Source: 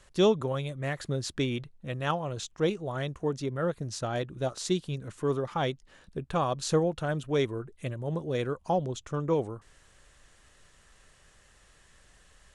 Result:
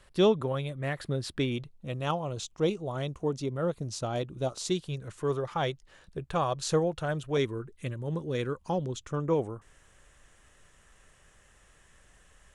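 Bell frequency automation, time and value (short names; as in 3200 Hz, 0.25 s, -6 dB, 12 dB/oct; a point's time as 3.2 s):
bell -8.5 dB 0.5 oct
6600 Hz
from 1.52 s 1700 Hz
from 4.7 s 240 Hz
from 7.37 s 680 Hz
from 9.1 s 4400 Hz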